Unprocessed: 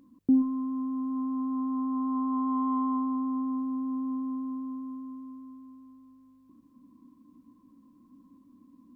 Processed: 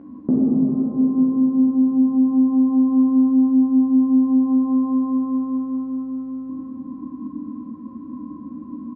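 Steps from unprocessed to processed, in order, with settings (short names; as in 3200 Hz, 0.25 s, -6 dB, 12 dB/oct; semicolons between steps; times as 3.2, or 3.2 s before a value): LPF 1200 Hz 12 dB/oct; treble ducked by the level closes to 330 Hz, closed at -28 dBFS; HPF 58 Hz; compressor, threshold -31 dBFS, peak gain reduction 11 dB; doubler 13 ms -4.5 dB; plate-style reverb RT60 4.6 s, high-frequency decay 0.75×, DRR -4.5 dB; maximiser +24.5 dB; gain -8.5 dB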